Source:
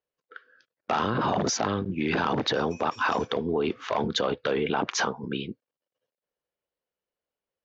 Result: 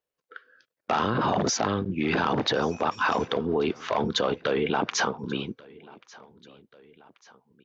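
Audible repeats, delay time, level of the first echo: 2, 1136 ms, -23.5 dB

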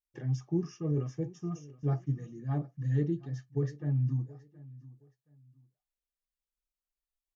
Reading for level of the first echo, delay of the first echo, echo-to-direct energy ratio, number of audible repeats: -20.0 dB, 722 ms, -19.5 dB, 2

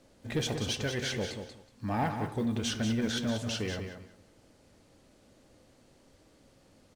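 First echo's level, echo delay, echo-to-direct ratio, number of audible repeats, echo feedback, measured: -7.5 dB, 186 ms, -7.5 dB, 2, 18%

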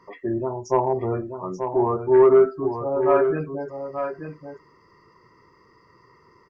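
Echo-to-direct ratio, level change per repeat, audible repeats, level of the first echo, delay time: -7.5 dB, no regular repeats, 1, -7.5 dB, 884 ms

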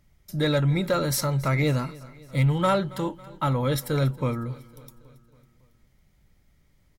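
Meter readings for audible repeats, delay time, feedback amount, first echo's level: 4, 276 ms, 59%, -21.0 dB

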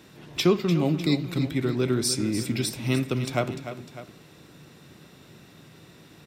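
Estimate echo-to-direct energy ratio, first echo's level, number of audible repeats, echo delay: -10.0 dB, -11.0 dB, 2, 297 ms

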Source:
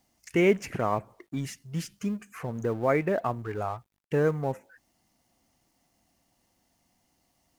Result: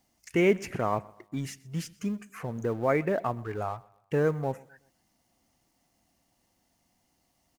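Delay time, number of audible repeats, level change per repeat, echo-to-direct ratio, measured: 125 ms, 2, -8.0 dB, -23.0 dB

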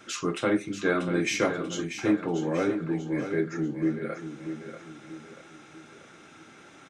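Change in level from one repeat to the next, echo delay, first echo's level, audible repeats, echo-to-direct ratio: -7.5 dB, 638 ms, -9.0 dB, 4, -8.0 dB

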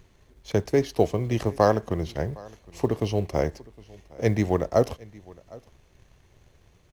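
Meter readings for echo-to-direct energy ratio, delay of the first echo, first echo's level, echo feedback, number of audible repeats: -23.0 dB, 761 ms, -23.0 dB, no regular repeats, 1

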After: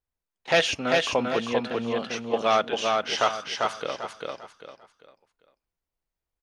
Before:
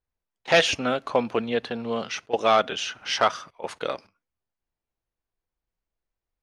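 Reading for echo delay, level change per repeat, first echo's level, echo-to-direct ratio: 396 ms, -10.0 dB, -3.0 dB, -2.5 dB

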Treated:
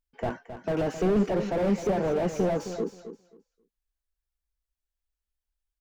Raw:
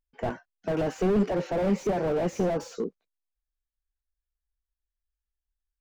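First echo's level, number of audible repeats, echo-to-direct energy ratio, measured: -11.0 dB, 2, -11.0 dB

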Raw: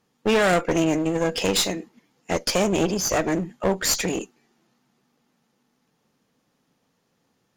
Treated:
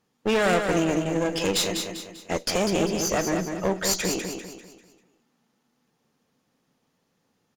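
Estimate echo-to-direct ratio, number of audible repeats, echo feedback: -5.0 dB, 4, 40%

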